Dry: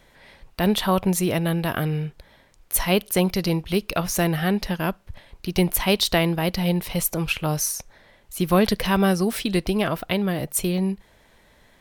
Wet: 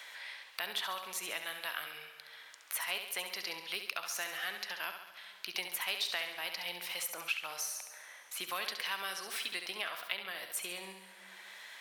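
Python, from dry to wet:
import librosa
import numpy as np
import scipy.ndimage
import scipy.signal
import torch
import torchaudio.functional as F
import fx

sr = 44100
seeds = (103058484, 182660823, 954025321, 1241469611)

y = scipy.signal.sosfilt(scipy.signal.butter(2, 1500.0, 'highpass', fs=sr, output='sos'), x)
y = fx.high_shelf(y, sr, hz=5300.0, db=-8.0)
y = fx.echo_feedback(y, sr, ms=68, feedback_pct=46, wet_db=-8)
y = fx.rev_plate(y, sr, seeds[0], rt60_s=1.6, hf_ratio=0.85, predelay_ms=0, drr_db=16.0)
y = fx.band_squash(y, sr, depth_pct=70)
y = y * 10.0 ** (-6.5 / 20.0)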